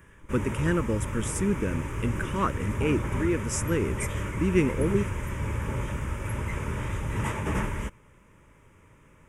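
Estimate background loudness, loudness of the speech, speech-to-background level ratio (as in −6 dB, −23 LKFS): −32.0 LKFS, −29.0 LKFS, 3.0 dB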